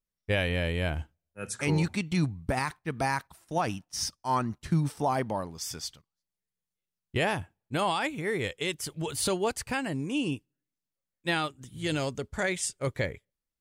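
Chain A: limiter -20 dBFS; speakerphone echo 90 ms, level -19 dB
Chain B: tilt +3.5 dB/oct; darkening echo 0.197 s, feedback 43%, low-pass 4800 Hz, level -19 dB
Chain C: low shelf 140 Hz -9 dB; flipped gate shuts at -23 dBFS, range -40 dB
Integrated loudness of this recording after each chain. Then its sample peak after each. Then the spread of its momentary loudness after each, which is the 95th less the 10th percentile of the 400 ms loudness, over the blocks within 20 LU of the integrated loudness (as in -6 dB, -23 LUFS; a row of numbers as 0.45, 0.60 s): -32.5, -28.0, -43.0 LUFS; -19.5, -8.0, -20.0 dBFS; 7, 11, 19 LU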